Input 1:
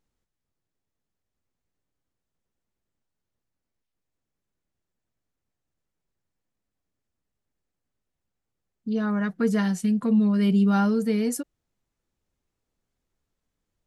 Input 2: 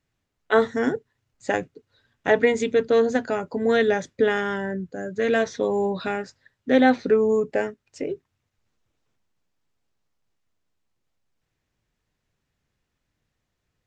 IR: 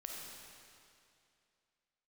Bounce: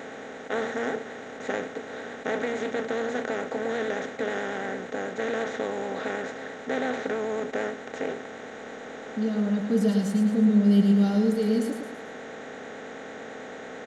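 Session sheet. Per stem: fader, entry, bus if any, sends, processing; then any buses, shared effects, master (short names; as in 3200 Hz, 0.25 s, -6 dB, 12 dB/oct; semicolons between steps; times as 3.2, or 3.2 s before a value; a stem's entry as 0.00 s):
-0.5 dB, 0.30 s, no send, echo send -6 dB, de-esser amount 80%; band shelf 1400 Hz -14 dB
-16.0 dB, 0.00 s, no send, no echo send, per-bin compression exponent 0.2; vibrato 9.1 Hz 47 cents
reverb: off
echo: feedback echo 0.109 s, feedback 43%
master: dry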